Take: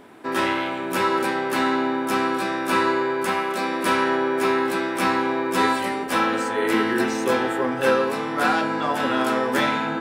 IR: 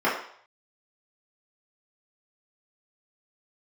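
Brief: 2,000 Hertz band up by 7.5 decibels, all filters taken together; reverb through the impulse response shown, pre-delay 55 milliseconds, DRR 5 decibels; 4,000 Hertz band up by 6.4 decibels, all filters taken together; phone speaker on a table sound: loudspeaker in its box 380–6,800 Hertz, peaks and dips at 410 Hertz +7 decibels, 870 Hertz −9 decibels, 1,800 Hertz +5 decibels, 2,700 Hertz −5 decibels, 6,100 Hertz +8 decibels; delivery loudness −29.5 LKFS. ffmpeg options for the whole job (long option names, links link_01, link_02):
-filter_complex "[0:a]equalizer=frequency=2000:width_type=o:gain=5.5,equalizer=frequency=4000:width_type=o:gain=7,asplit=2[link_01][link_02];[1:a]atrim=start_sample=2205,adelay=55[link_03];[link_02][link_03]afir=irnorm=-1:irlink=0,volume=-22dB[link_04];[link_01][link_04]amix=inputs=2:normalize=0,highpass=frequency=380:width=0.5412,highpass=frequency=380:width=1.3066,equalizer=frequency=410:width_type=q:width=4:gain=7,equalizer=frequency=870:width_type=q:width=4:gain=-9,equalizer=frequency=1800:width_type=q:width=4:gain=5,equalizer=frequency=2700:width_type=q:width=4:gain=-5,equalizer=frequency=6100:width_type=q:width=4:gain=8,lowpass=frequency=6800:width=0.5412,lowpass=frequency=6800:width=1.3066,volume=-11.5dB"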